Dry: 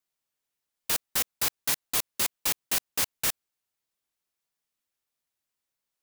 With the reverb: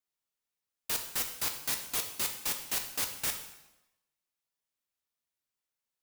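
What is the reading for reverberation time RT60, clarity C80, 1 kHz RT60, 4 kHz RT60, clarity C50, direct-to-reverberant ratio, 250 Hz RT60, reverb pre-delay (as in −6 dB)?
0.95 s, 10.5 dB, 0.95 s, 0.85 s, 8.0 dB, 4.5 dB, 1.0 s, 4 ms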